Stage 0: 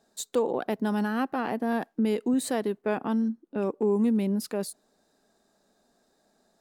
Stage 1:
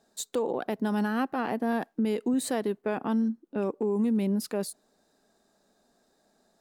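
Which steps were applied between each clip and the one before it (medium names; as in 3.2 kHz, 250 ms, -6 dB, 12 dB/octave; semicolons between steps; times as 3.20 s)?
peak limiter -20 dBFS, peak gain reduction 4.5 dB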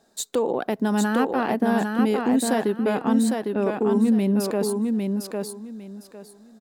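feedback delay 804 ms, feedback 22%, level -4 dB; trim +5.5 dB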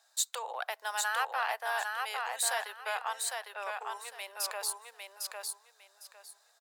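Bessel high-pass 1.2 kHz, order 8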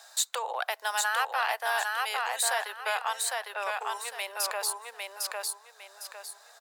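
three bands compressed up and down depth 40%; trim +4.5 dB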